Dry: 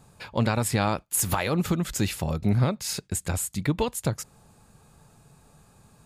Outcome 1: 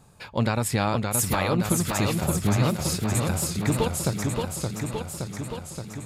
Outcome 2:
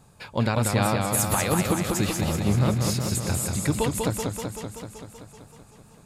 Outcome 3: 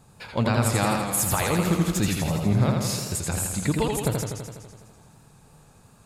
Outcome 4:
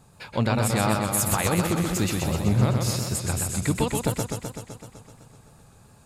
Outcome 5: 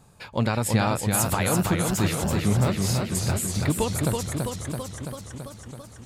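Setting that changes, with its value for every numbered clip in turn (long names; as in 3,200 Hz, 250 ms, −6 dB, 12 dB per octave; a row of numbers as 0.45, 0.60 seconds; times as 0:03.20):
feedback echo with a swinging delay time, delay time: 571, 191, 83, 127, 330 milliseconds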